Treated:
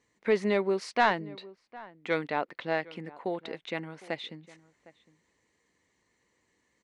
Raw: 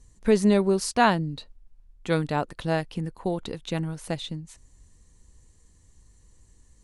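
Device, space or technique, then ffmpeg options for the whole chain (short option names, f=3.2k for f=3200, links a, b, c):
intercom: -filter_complex "[0:a]asettb=1/sr,asplit=3[a][b][c];[a]atrim=end=2.284[d];[b]atrim=start=2.28:end=2.84,asetpts=PTS-STARTPTS,afade=t=in:d=0.004:c=qsin,afade=t=out:st=0.556:d=0.004:c=qsin,lowpass=6.6k[e];[c]atrim=start=2.836[f];[d][e]acrossfade=d=0.004:c1=hsin:c2=qsin[g];[g][f]acrossfade=d=0.004:c1=qsin:c2=hsin,highpass=320,lowpass=3.7k,equalizer=f=2.1k:t=o:w=0.4:g=9.5,asoftclip=type=tanh:threshold=-8.5dB,asplit=2[h][i];[i]adelay=758,volume=-20dB,highshelf=f=4k:g=-17.1[j];[h][j]amix=inputs=2:normalize=0,volume=-2.5dB"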